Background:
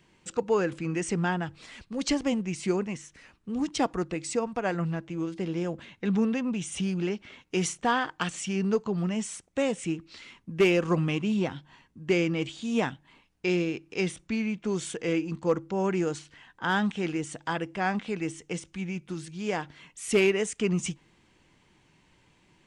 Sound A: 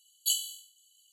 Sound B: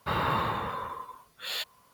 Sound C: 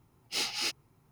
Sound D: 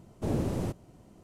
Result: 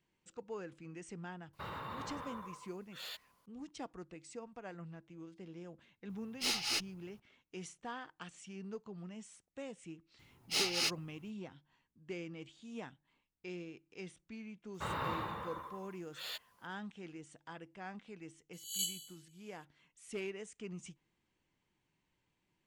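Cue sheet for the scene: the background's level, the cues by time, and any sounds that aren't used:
background -19 dB
1.53 s: add B -11.5 dB + peak limiter -24 dBFS
6.09 s: add C -1 dB + single-diode clipper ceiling -26 dBFS
10.19 s: add C -1 dB
14.74 s: add B -10 dB
18.53 s: add A -10.5 dB + reverse spectral sustain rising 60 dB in 0.54 s
not used: D

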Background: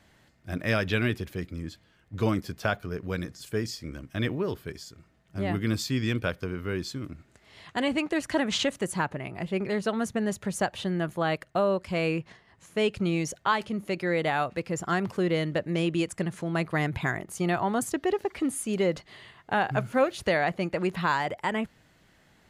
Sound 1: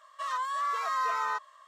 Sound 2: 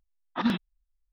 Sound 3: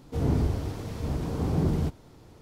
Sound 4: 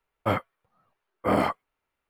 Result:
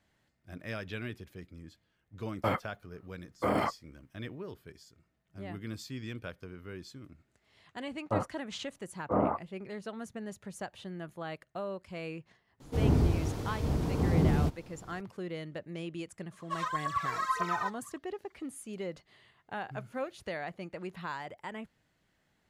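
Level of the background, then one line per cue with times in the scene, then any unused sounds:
background -13 dB
2.18 s: add 4 -0.5 dB + peak limiter -18.5 dBFS
7.85 s: add 4 -4.5 dB + low-pass 1.2 kHz 24 dB/octave
12.60 s: add 3 -0.5 dB
16.31 s: add 1 -6 dB + phaser 1.8 Hz, delay 2.3 ms, feedback 76%
not used: 2

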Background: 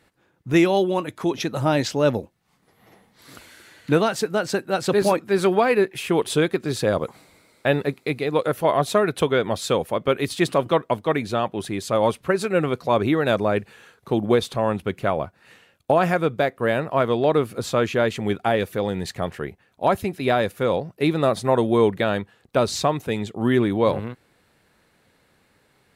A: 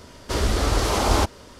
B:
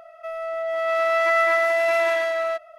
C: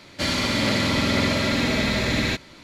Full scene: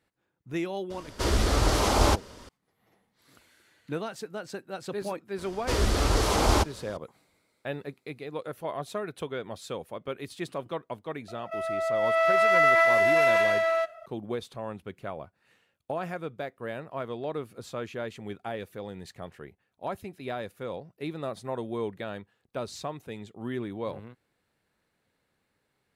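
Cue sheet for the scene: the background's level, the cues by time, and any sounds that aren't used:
background -14.5 dB
0.90 s: add A -2.5 dB
5.38 s: add A -3 dB
11.28 s: add B -1 dB
not used: C

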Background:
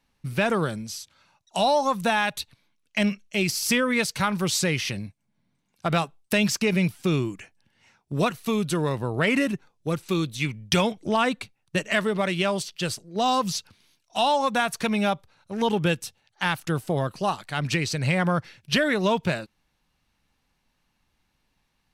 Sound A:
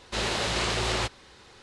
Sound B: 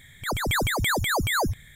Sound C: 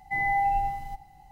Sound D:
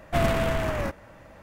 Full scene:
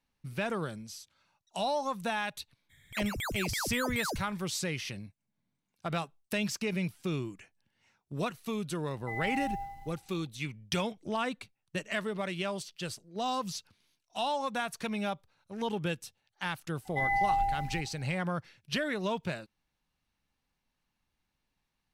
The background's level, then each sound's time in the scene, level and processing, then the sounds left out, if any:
background -10 dB
2.69 s: add B -11.5 dB, fades 0.02 s
8.96 s: add C -11 dB + short-mantissa float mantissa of 4-bit
16.85 s: add C -3 dB
not used: A, D

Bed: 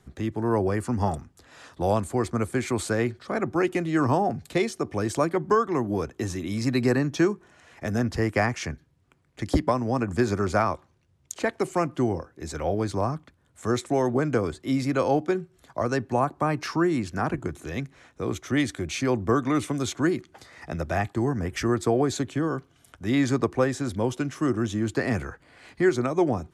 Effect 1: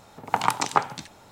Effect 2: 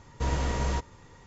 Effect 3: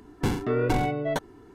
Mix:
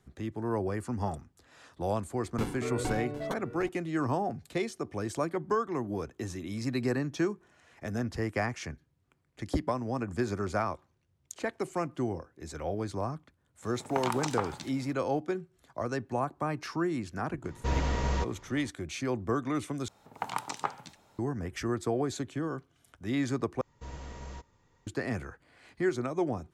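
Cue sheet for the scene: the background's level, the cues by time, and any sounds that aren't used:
bed -7.5 dB
2.15 s: add 3 -9 dB + delay 757 ms -13 dB
13.62 s: add 1 -6 dB + peak limiter -9.5 dBFS
17.44 s: add 2 -1 dB + low-pass 6.3 kHz
19.88 s: replace with 1 -11.5 dB
23.61 s: replace with 2 -15 dB

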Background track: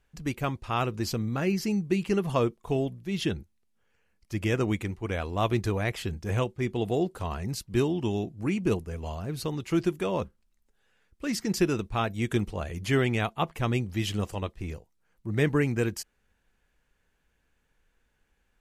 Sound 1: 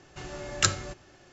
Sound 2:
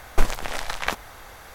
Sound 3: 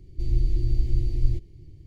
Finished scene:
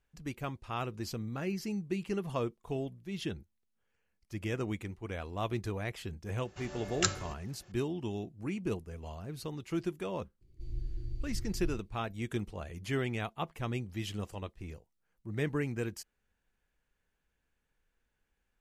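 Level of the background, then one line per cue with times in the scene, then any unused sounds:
background track -8.5 dB
6.40 s: add 1 -6 dB
10.41 s: add 3 -15.5 dB
not used: 2

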